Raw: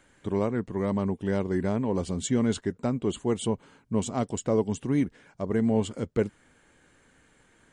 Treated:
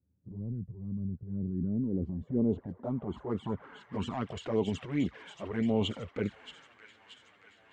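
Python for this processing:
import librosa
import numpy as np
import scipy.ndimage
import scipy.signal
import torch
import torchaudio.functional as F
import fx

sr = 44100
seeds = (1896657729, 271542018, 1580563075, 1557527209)

y = scipy.signal.sosfilt(scipy.signal.butter(4, 50.0, 'highpass', fs=sr, output='sos'), x)
y = fx.low_shelf(y, sr, hz=410.0, db=-5.0)
y = fx.transient(y, sr, attack_db=-5, sustain_db=7)
y = fx.echo_wet_highpass(y, sr, ms=627, feedback_pct=69, hz=1600.0, wet_db=-9.5)
y = fx.env_flanger(y, sr, rest_ms=11.9, full_db=-24.0)
y = fx.filter_sweep_lowpass(y, sr, from_hz=140.0, to_hz=2800.0, start_s=1.18, end_s=4.37, q=1.2)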